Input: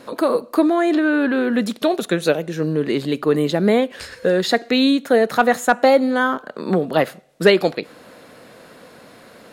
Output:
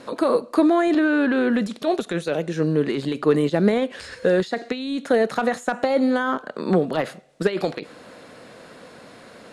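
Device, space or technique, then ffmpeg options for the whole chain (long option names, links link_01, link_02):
de-esser from a sidechain: -filter_complex "[0:a]lowpass=frequency=10000:width=0.5412,lowpass=frequency=10000:width=1.3066,asplit=2[link_01][link_02];[link_02]highpass=4100,apad=whole_len=419995[link_03];[link_01][link_03]sidechaincompress=threshold=-39dB:ratio=12:attack=3.6:release=33"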